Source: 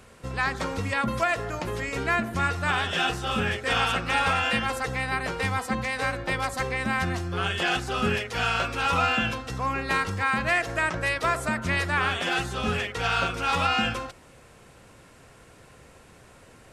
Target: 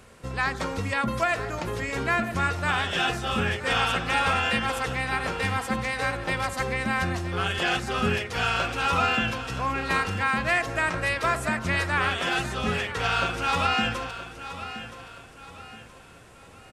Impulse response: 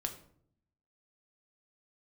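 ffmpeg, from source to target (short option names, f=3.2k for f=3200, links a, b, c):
-af "aecho=1:1:972|1944|2916|3888:0.237|0.0901|0.0342|0.013"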